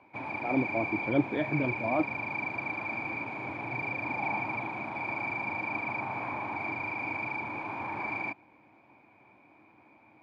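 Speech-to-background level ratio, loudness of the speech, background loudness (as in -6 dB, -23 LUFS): 2.0 dB, -31.5 LUFS, -33.5 LUFS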